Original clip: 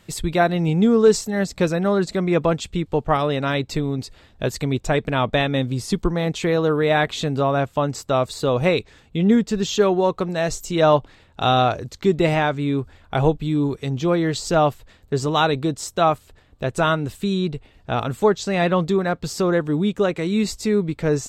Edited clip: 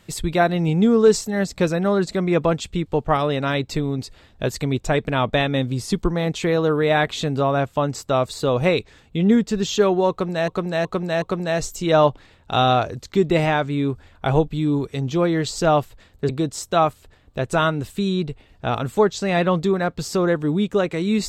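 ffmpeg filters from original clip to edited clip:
-filter_complex "[0:a]asplit=5[a][b][c][d][e];[a]atrim=end=10.482[f];[b]atrim=start=10.108:end=10.482[g];[c]atrim=start=10.108:end=10.482[h];[d]atrim=start=10.108:end=15.182[i];[e]atrim=start=15.538[j];[f][g]acrossfade=d=0.004:c1=hsin:c2=hsin[k];[k][h]acrossfade=d=0.004:c1=hsin:c2=hsin[l];[l][i]acrossfade=d=0.004:c1=hsin:c2=hsin[m];[m][j]acrossfade=d=0.004:c1=hsin:c2=hsin"

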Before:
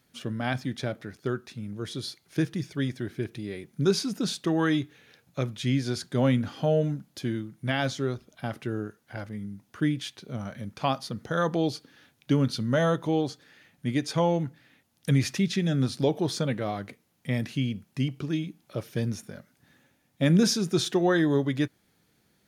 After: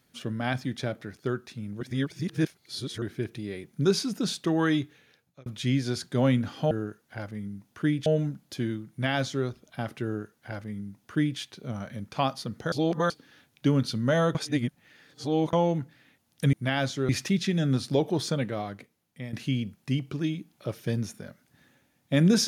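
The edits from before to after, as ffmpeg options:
-filter_complex "[0:a]asplit=13[a][b][c][d][e][f][g][h][i][j][k][l][m];[a]atrim=end=1.812[n];[b]atrim=start=1.808:end=3.022,asetpts=PTS-STARTPTS,areverse[o];[c]atrim=start=3.018:end=5.46,asetpts=PTS-STARTPTS,afade=t=out:st=1.802:d=0.64[p];[d]atrim=start=5.46:end=6.712,asetpts=PTS-STARTPTS,afade=t=in:d=0.004:c=hsin[q];[e]atrim=start=8.688:end=10.042[r];[f]atrim=start=6.708:end=11.372[s];[g]atrim=start=11.368:end=11.752,asetpts=PTS-STARTPTS,areverse[t];[h]atrim=start=11.748:end=13.002[u];[i]atrim=start=12.998:end=14.182,asetpts=PTS-STARTPTS,areverse[v];[j]atrim=start=14.178:end=15.182[w];[k]atrim=start=7.548:end=8.112[x];[l]atrim=start=15.178:end=17.42,asetpts=PTS-STARTPTS,afade=t=out:st=1.232:d=1.01:silence=0.251189[y];[m]atrim=start=17.42,asetpts=PTS-STARTPTS,afade=t=in:d=0.004:c=hsin:silence=0.251189[z];[n][o]acrossfade=d=0.004:c1=hsin:c2=hsin[aa];[p][q]concat=n=2:v=0:a=1[ab];[aa][ab]acrossfade=d=0.004:c1=hsin:c2=hsin[ac];[ac][r]acrossfade=d=0.004:c1=hsin:c2=hsin[ad];[ad][s]acrossfade=d=0.004:c1=hsin:c2=hsin[ae];[ae][t]acrossfade=d=0.004:c1=hsin:c2=hsin[af];[af][u]acrossfade=d=0.004:c1=hsin:c2=hsin[ag];[ag][v]acrossfade=d=0.004:c1=hsin:c2=hsin[ah];[ah][w]acrossfade=d=0.004:c1=hsin:c2=hsin[ai];[ai][x]acrossfade=d=0.004:c1=hsin:c2=hsin[aj];[y][z]concat=n=2:v=0:a=1[ak];[aj][ak]acrossfade=d=0.004:c1=hsin:c2=hsin"

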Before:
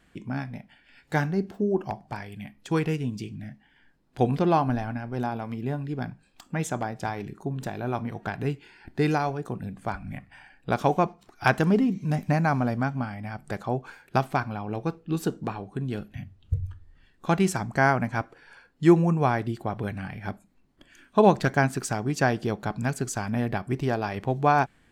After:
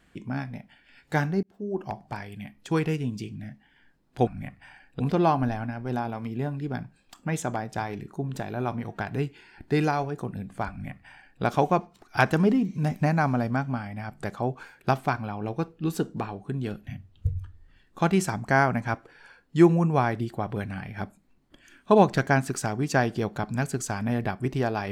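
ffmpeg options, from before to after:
-filter_complex "[0:a]asplit=4[a][b][c][d];[a]atrim=end=1.43,asetpts=PTS-STARTPTS,afade=t=out:st=1.426:d=0.004:c=hsin[e];[b]atrim=start=1.43:end=4.272,asetpts=PTS-STARTPTS,afade=t=in:d=0.56[f];[c]atrim=start=9.968:end=10.702[g];[d]atrim=start=4.268[h];[e][f]concat=n=2:v=0:a=1[i];[i][g]acrossfade=d=0.004:c1=hsin:c2=hsin[j];[j][h]acrossfade=d=0.004:c1=hsin:c2=hsin"

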